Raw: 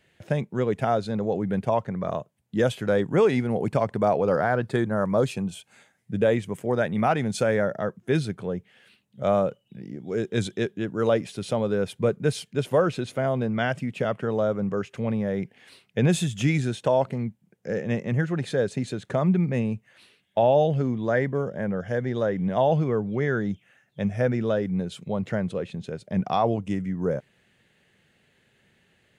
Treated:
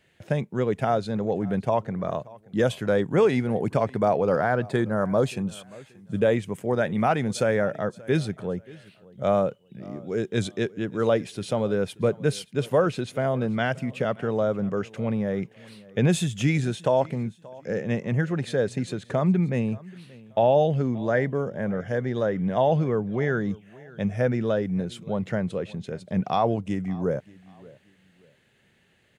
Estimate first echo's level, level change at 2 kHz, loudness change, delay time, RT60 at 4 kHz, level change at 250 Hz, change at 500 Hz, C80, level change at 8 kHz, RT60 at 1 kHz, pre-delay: −22.0 dB, 0.0 dB, 0.0 dB, 580 ms, no reverb audible, 0.0 dB, 0.0 dB, no reverb audible, 0.0 dB, no reverb audible, no reverb audible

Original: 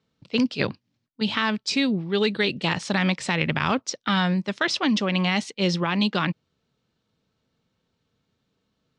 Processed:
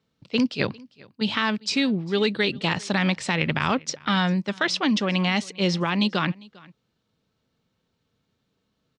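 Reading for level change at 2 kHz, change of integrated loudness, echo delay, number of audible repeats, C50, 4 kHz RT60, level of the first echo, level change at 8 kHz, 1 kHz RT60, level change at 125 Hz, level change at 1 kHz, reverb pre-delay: 0.0 dB, 0.0 dB, 400 ms, 1, no reverb audible, no reverb audible, −24.0 dB, 0.0 dB, no reverb audible, 0.0 dB, 0.0 dB, no reverb audible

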